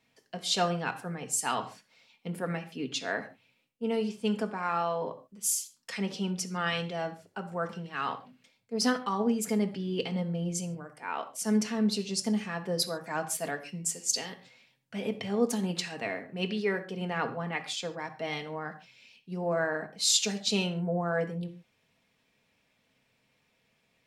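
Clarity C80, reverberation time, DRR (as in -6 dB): 16.5 dB, not exponential, 4.0 dB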